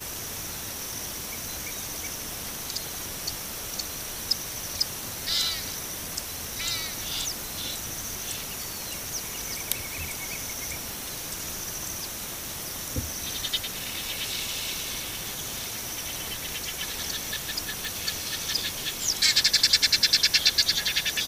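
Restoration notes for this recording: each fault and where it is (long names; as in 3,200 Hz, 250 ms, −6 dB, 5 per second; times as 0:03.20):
0:17.85: click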